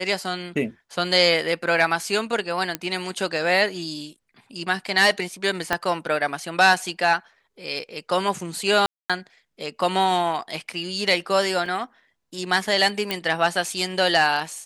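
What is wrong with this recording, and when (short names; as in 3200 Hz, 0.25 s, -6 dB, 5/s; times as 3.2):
2.75 pop -8 dBFS
5.73 pop -7 dBFS
8.86–9.1 gap 0.236 s
11.66 gap 2.3 ms
13.11 pop -9 dBFS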